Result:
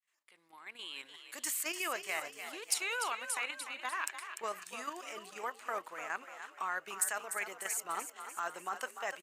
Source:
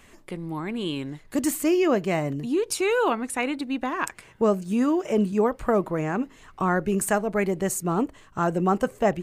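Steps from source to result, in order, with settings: opening faded in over 1.07 s; HPF 1400 Hz 12 dB/oct; level quantiser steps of 9 dB; frequency-shifting echo 0.296 s, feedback 54%, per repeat +45 Hz, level -9.5 dB; overloaded stage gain 20 dB

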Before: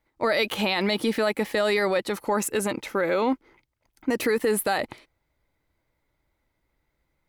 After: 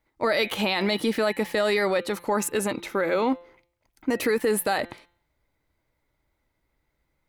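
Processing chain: de-hum 173.2 Hz, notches 24

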